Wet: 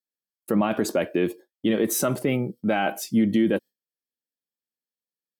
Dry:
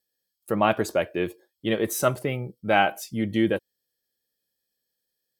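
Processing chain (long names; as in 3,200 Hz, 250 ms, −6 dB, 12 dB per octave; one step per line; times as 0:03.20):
high-pass filter 140 Hz 12 dB per octave
noise gate with hold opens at −41 dBFS
parametric band 240 Hz +8.5 dB 1.1 octaves
brickwall limiter −16.5 dBFS, peak gain reduction 11.5 dB
level +4 dB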